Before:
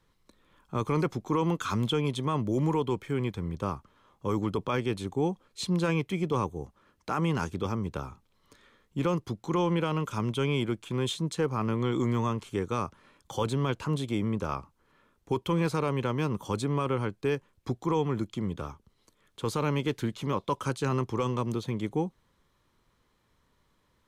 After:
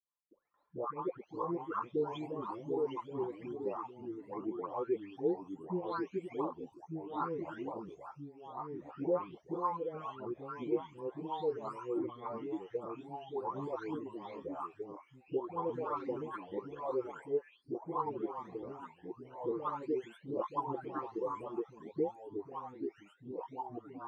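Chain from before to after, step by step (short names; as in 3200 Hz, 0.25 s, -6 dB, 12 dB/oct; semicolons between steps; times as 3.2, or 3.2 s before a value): spectral delay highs late, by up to 0.633 s; reverb removal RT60 1.2 s; gate with hold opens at -59 dBFS; wah 2.4 Hz 380–1100 Hz, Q 3.3; echoes that change speed 0.492 s, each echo -2 st, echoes 2, each echo -6 dB; gain +2 dB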